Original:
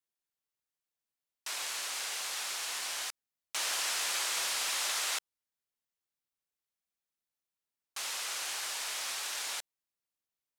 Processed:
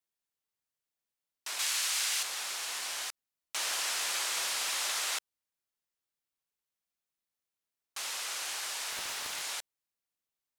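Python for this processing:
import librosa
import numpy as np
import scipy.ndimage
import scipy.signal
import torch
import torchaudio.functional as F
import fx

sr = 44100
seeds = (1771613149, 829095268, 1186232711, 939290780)

y = fx.tilt_shelf(x, sr, db=-7.0, hz=910.0, at=(1.59, 2.23))
y = fx.doppler_dist(y, sr, depth_ms=0.51, at=(8.91, 9.42))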